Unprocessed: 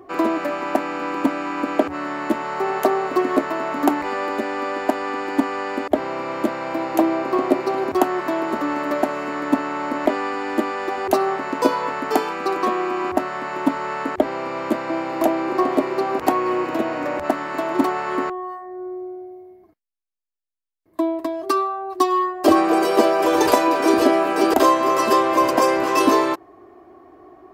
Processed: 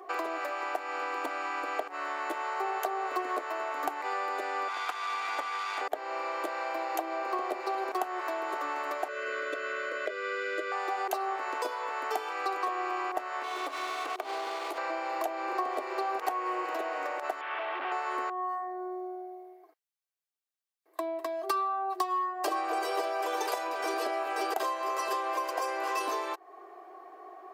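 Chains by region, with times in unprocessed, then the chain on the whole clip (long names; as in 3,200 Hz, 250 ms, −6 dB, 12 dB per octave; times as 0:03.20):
0:04.68–0:05.81: lower of the sound and its delayed copy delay 0.86 ms + meter weighting curve A
0:09.08–0:10.72: Chebyshev band-stop filter 600–1,300 Hz + high-frequency loss of the air 67 metres + comb filter 2 ms, depth 85%
0:13.43–0:14.78: lower of the sound and its delayed copy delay 2.8 ms + parametric band 1,700 Hz −7 dB 0.44 octaves + downward compressor 5 to 1, threshold −24 dBFS
0:17.41–0:17.92: linear delta modulator 16 kbit/s, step −34 dBFS + spectral tilt +4 dB per octave + saturating transformer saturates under 770 Hz
whole clip: high-pass filter 490 Hz 24 dB per octave; downward compressor 4 to 1, threshold −32 dBFS; comb filter 2.6 ms, depth 39%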